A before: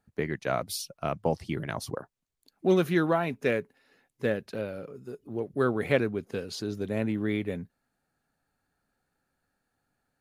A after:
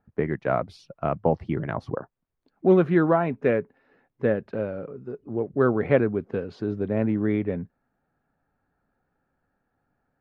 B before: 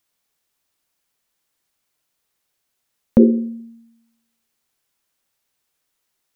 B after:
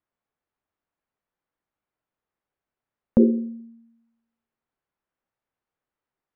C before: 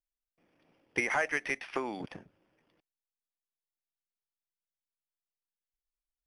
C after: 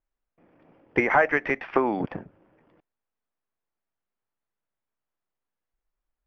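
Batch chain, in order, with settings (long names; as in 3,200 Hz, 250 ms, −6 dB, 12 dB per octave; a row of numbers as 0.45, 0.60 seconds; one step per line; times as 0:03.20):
low-pass filter 1,500 Hz 12 dB per octave
normalise the peak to −6 dBFS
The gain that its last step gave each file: +5.5, −5.0, +12.0 decibels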